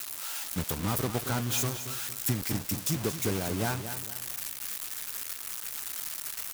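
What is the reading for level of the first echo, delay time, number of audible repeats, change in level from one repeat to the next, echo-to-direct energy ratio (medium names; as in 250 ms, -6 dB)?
-10.5 dB, 228 ms, 3, -8.5 dB, -10.0 dB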